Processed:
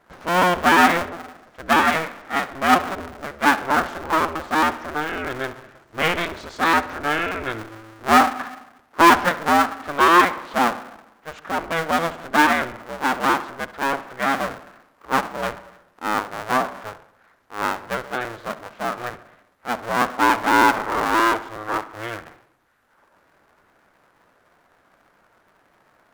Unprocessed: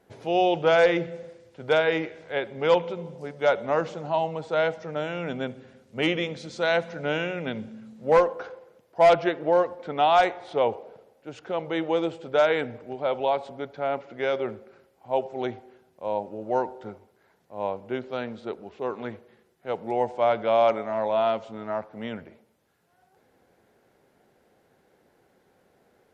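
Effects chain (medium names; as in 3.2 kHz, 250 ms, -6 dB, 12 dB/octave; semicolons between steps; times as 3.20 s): cycle switcher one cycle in 2, inverted; peaking EQ 1.4 kHz +10.5 dB 1.3 oct; filtered feedback delay 67 ms, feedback 59%, low-pass 4.4 kHz, level -17 dB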